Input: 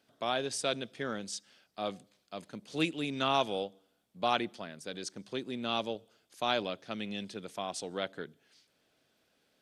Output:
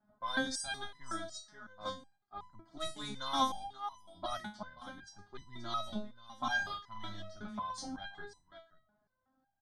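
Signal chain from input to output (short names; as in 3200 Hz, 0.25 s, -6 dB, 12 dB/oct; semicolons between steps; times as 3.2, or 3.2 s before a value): octaver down 1 oct, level -4 dB; high shelf 2500 Hz +5 dB; 4.39–5.06 compressor, threshold -37 dBFS, peak gain reduction 8 dB; 5.91–7.46 doubler 41 ms -5 dB; low-pass opened by the level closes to 900 Hz, open at -26 dBFS; fixed phaser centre 1100 Hz, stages 4; echo 0.529 s -16 dB; stepped resonator 5.4 Hz 210–1000 Hz; gain +17.5 dB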